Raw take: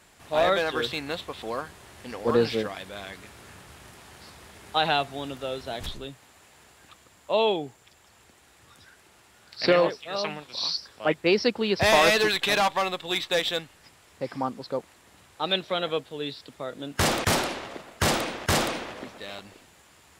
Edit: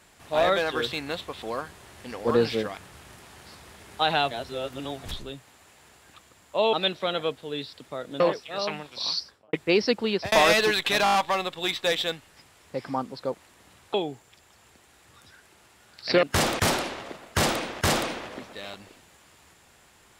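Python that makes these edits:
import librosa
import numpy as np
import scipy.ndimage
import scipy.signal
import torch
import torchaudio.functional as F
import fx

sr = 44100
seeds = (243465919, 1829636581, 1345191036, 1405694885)

y = fx.studio_fade_out(x, sr, start_s=10.75, length_s=0.35)
y = fx.edit(y, sr, fx.cut(start_s=2.77, length_s=0.75),
    fx.reverse_span(start_s=5.06, length_s=0.73),
    fx.swap(start_s=7.48, length_s=2.29, other_s=15.41, other_length_s=1.47),
    fx.fade_out_span(start_s=11.63, length_s=0.26, curve='qsin'),
    fx.stutter(start_s=12.61, slice_s=0.02, count=6), tone=tone)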